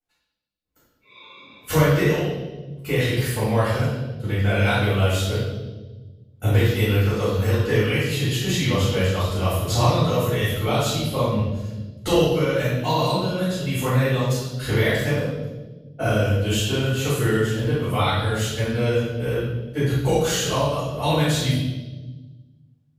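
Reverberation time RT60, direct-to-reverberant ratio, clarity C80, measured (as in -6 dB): 1.2 s, -13.0 dB, 2.5 dB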